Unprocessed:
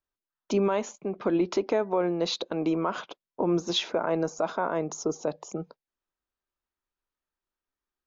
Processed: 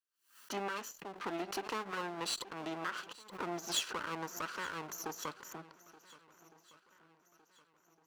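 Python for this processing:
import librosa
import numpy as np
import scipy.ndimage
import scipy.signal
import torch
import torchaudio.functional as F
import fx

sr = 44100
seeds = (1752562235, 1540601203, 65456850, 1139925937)

p1 = fx.lower_of_two(x, sr, delay_ms=0.68)
p2 = fx.highpass(p1, sr, hz=1200.0, slope=6)
p3 = p2 + fx.echo_swing(p2, sr, ms=1459, ratio=1.5, feedback_pct=40, wet_db=-20, dry=0)
p4 = fx.pre_swell(p3, sr, db_per_s=130.0)
y = p4 * 10.0 ** (-3.0 / 20.0)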